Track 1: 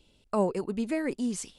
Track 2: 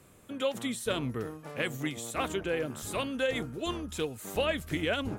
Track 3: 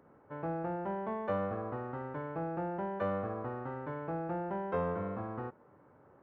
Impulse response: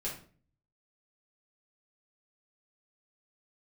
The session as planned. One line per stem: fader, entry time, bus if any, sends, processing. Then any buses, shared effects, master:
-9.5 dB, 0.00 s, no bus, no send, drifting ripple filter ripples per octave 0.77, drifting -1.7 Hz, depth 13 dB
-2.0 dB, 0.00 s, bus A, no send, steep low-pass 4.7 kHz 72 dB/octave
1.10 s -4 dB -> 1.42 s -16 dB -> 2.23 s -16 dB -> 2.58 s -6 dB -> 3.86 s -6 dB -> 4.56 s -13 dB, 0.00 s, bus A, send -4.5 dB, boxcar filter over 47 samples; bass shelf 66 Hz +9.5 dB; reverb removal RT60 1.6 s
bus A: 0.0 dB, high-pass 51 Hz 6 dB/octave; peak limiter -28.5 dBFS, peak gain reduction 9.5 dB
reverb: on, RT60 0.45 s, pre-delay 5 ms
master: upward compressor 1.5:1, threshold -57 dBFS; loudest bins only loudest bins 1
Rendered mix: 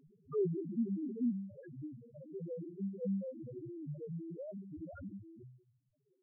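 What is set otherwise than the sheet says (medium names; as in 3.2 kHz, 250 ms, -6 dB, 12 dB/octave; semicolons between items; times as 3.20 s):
stem 1 -9.5 dB -> -2.5 dB; stem 3 -4.0 dB -> +7.0 dB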